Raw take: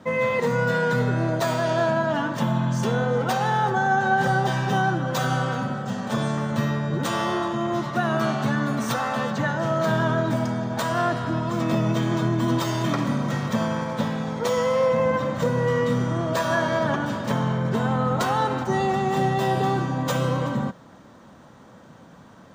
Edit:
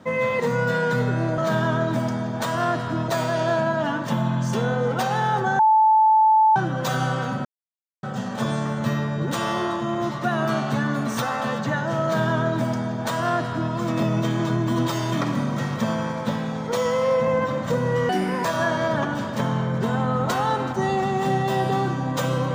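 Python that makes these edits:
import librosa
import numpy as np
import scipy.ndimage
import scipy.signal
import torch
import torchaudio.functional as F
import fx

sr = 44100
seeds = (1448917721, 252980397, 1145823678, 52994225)

y = fx.edit(x, sr, fx.bleep(start_s=3.89, length_s=0.97, hz=873.0, db=-12.5),
    fx.insert_silence(at_s=5.75, length_s=0.58),
    fx.duplicate(start_s=9.75, length_s=1.7, to_s=1.38),
    fx.speed_span(start_s=15.81, length_s=0.55, speed=1.53), tone=tone)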